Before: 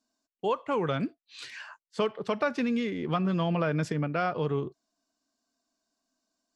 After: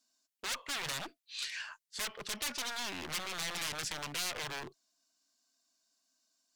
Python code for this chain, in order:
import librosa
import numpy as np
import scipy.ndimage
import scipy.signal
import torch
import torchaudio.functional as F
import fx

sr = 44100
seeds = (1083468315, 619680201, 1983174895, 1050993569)

y = fx.cheby_harmonics(x, sr, harmonics=(6,), levels_db=(-20,), full_scale_db=-14.0)
y = 10.0 ** (-31.5 / 20.0) * (np.abs((y / 10.0 ** (-31.5 / 20.0) + 3.0) % 4.0 - 2.0) - 1.0)
y = fx.tilt_shelf(y, sr, db=-8.5, hz=1400.0)
y = y * 10.0 ** (-1.5 / 20.0)